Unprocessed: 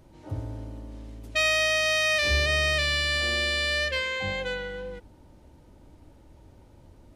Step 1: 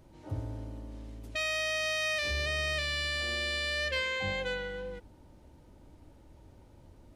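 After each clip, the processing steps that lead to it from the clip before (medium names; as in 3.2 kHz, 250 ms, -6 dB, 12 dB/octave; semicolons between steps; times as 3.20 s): peak limiter -18.5 dBFS, peak gain reduction 7.5 dB; trim -3 dB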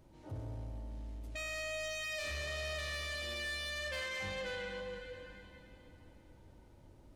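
reverberation RT60 3.2 s, pre-delay 98 ms, DRR 6 dB; saturation -31 dBFS, distortion -10 dB; trim -4.5 dB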